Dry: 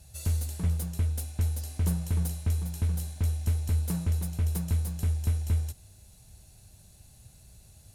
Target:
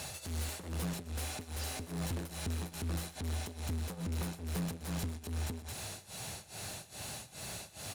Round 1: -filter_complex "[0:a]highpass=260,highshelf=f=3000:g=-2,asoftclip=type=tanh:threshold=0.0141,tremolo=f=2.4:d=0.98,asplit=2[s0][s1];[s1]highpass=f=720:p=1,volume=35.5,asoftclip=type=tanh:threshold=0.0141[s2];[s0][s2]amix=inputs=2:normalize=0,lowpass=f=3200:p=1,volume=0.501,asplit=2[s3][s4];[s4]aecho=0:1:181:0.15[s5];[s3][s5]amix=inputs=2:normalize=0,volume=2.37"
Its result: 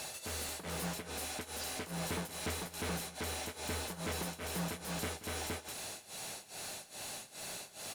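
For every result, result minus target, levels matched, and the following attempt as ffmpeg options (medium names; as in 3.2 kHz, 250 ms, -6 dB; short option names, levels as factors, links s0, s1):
echo 58 ms late; 125 Hz band -6.5 dB
-filter_complex "[0:a]highpass=260,highshelf=f=3000:g=-2,asoftclip=type=tanh:threshold=0.0141,tremolo=f=2.4:d=0.98,asplit=2[s0][s1];[s1]highpass=f=720:p=1,volume=35.5,asoftclip=type=tanh:threshold=0.0141[s2];[s0][s2]amix=inputs=2:normalize=0,lowpass=f=3200:p=1,volume=0.501,asplit=2[s3][s4];[s4]aecho=0:1:123:0.15[s5];[s3][s5]amix=inputs=2:normalize=0,volume=2.37"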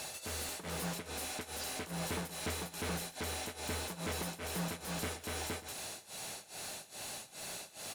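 125 Hz band -6.5 dB
-filter_complex "[0:a]highpass=91,highshelf=f=3000:g=-2,asoftclip=type=tanh:threshold=0.0141,tremolo=f=2.4:d=0.98,asplit=2[s0][s1];[s1]highpass=f=720:p=1,volume=35.5,asoftclip=type=tanh:threshold=0.0141[s2];[s0][s2]amix=inputs=2:normalize=0,lowpass=f=3200:p=1,volume=0.501,asplit=2[s3][s4];[s4]aecho=0:1:123:0.15[s5];[s3][s5]amix=inputs=2:normalize=0,volume=2.37"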